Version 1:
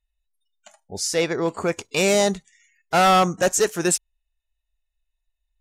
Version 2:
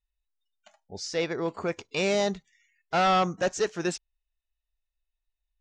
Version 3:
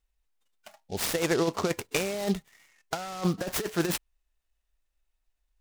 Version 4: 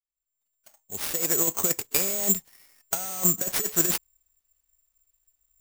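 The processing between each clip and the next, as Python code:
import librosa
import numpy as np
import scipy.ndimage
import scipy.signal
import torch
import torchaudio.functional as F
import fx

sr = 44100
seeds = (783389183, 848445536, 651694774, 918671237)

y1 = scipy.signal.sosfilt(scipy.signal.butter(4, 5700.0, 'lowpass', fs=sr, output='sos'), x)
y1 = y1 * librosa.db_to_amplitude(-6.5)
y2 = fx.over_compress(y1, sr, threshold_db=-29.0, ratio=-0.5)
y2 = fx.noise_mod_delay(y2, sr, seeds[0], noise_hz=4000.0, depth_ms=0.051)
y2 = y2 * librosa.db_to_amplitude(2.5)
y3 = fx.fade_in_head(y2, sr, length_s=1.86)
y3 = (np.kron(y3[::6], np.eye(6)[0]) * 6)[:len(y3)]
y3 = y3 * librosa.db_to_amplitude(-3.5)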